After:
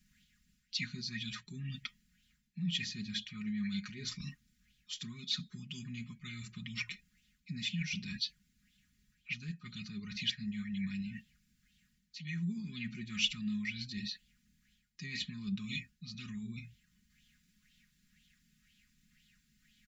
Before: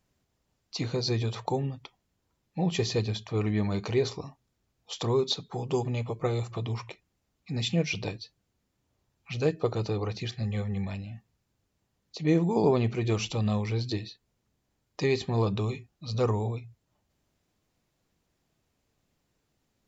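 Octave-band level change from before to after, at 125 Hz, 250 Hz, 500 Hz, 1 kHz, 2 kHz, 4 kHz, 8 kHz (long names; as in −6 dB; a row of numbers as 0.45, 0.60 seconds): −14.0 dB, −8.5 dB, −36.0 dB, −26.0 dB, −2.0 dB, −1.0 dB, can't be measured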